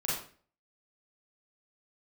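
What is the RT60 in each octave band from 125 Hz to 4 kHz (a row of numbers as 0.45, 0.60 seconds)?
0.50, 0.50, 0.45, 0.40, 0.40, 0.35 seconds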